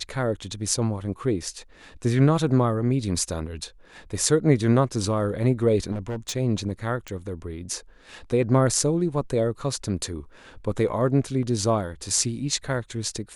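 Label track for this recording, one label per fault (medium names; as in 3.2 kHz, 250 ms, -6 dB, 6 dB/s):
5.910000	6.330000	clipped -25.5 dBFS
7.080000	7.080000	pop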